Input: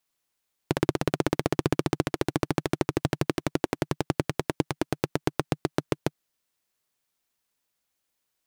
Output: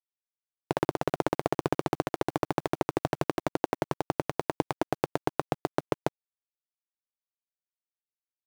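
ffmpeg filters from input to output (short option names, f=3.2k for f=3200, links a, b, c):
-af "equalizer=f=780:w=0.72:g=11,dynaudnorm=f=220:g=3:m=11.5dB,acrusher=bits=6:mix=0:aa=0.000001,volume=-7.5dB"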